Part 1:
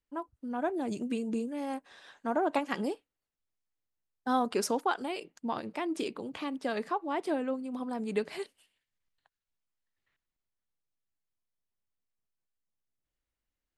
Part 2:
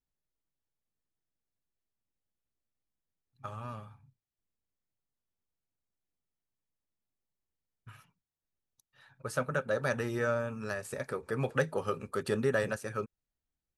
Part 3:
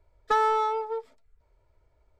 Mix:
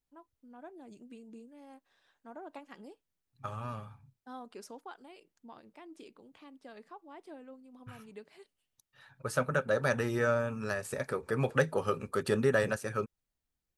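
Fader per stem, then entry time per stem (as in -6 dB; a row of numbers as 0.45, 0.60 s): -17.5 dB, +2.0 dB, off; 0.00 s, 0.00 s, off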